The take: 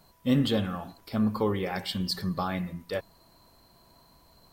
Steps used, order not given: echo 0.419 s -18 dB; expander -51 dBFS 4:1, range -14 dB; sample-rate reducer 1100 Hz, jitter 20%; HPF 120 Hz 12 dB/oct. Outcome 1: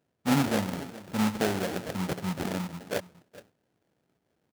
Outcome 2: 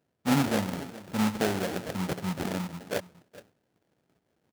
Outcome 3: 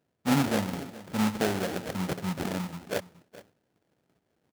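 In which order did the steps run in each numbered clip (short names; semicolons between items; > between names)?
echo > sample-rate reducer > HPF > expander; echo > sample-rate reducer > expander > HPF; sample-rate reducer > echo > expander > HPF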